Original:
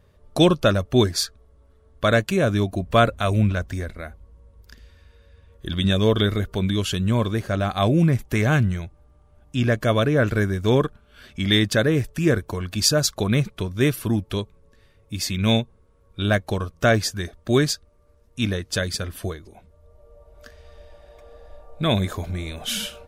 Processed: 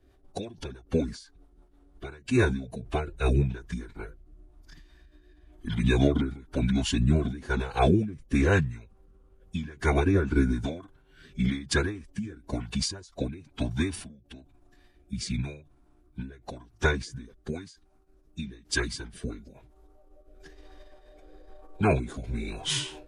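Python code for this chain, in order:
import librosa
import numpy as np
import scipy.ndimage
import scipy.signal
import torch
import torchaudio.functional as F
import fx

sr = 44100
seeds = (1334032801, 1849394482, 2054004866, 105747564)

y = fx.pitch_keep_formants(x, sr, semitones=-7.5)
y = fx.rotary_switch(y, sr, hz=6.0, then_hz=1.0, switch_at_s=1.9)
y = fx.end_taper(y, sr, db_per_s=110.0)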